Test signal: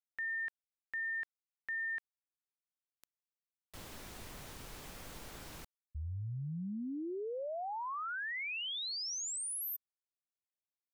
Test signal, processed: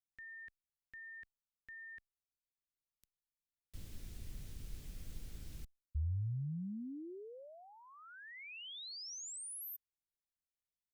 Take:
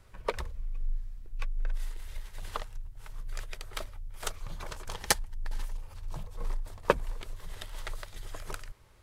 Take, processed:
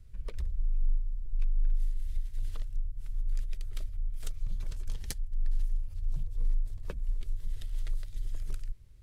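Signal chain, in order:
downward compressor 2 to 1, threshold −34 dBFS
guitar amp tone stack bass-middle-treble 10-0-1
level +13.5 dB

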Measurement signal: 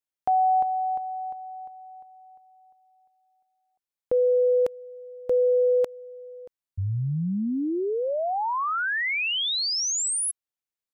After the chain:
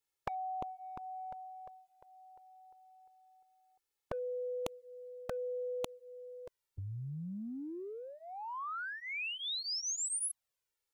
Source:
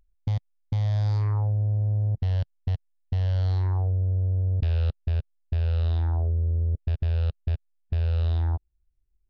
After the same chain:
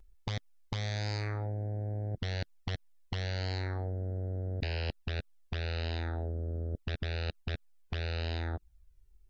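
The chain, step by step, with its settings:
flanger swept by the level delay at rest 2.3 ms, full sweep at −18.5 dBFS
every bin compressed towards the loudest bin 2 to 1
level −2 dB

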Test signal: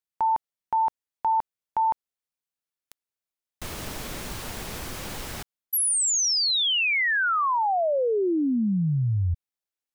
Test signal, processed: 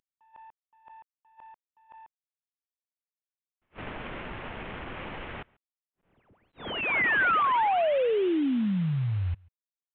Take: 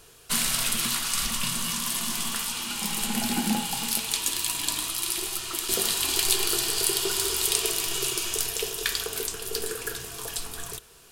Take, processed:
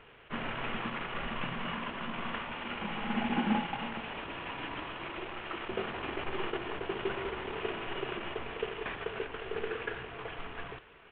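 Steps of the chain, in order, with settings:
variable-slope delta modulation 16 kbit/s
low-shelf EQ 190 Hz −5 dB
slap from a distant wall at 24 metres, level −27 dB
level that may rise only so fast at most 430 dB per second

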